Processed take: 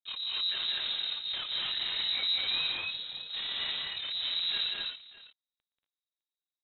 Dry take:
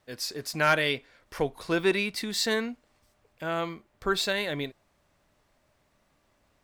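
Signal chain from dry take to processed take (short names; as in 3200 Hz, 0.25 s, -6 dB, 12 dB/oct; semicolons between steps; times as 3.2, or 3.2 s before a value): spectrum mirrored in octaves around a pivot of 580 Hz; Doppler pass-by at 2.44, 13 m/s, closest 2.1 m; low shelf 140 Hz +6.5 dB; reverse; compressor, threshold -43 dBFS, peak gain reduction 21.5 dB; reverse; limiter -42 dBFS, peak gain reduction 9 dB; sample leveller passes 3; AM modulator 35 Hz, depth 80%; sample leveller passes 5; tapped delay 0.119/0.185/0.231/0.242/0.262/0.607 s -15/-3.5/-6/-4.5/-10.5/-16 dB; inverted band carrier 3900 Hz; gain +7 dB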